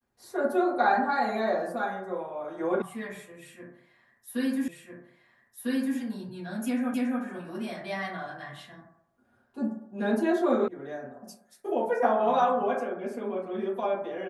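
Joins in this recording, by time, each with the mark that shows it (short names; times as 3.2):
2.82 sound cut off
4.68 repeat of the last 1.3 s
6.94 repeat of the last 0.28 s
10.68 sound cut off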